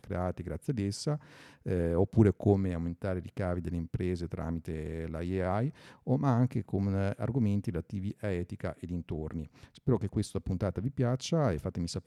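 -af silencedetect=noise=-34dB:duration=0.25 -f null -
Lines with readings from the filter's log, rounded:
silence_start: 1.16
silence_end: 1.66 | silence_duration: 0.50
silence_start: 5.70
silence_end: 6.07 | silence_duration: 0.37
silence_start: 9.43
silence_end: 9.88 | silence_duration: 0.44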